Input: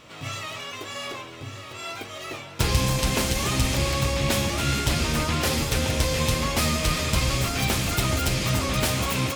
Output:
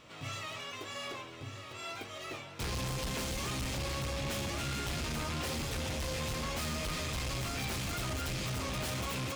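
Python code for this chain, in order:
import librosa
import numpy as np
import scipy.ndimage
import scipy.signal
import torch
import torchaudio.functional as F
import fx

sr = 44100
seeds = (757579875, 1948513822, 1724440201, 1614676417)

y = np.clip(x, -10.0 ** (-26.5 / 20.0), 10.0 ** (-26.5 / 20.0))
y = fx.peak_eq(y, sr, hz=14000.0, db=-3.5, octaves=1.0)
y = y * librosa.db_to_amplitude(-7.0)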